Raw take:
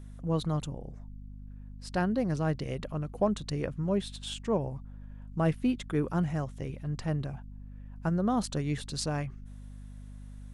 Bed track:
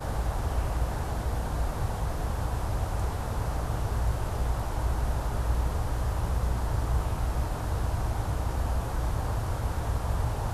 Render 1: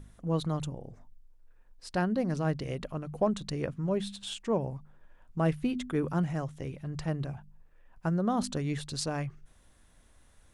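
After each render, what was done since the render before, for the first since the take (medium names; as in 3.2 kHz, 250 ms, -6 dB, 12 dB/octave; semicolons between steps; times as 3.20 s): de-hum 50 Hz, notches 5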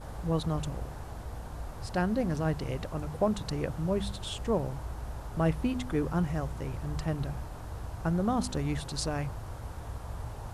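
add bed track -10.5 dB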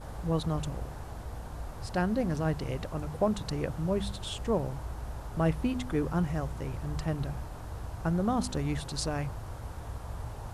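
no audible change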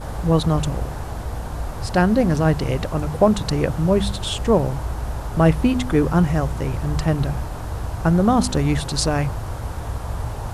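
trim +12 dB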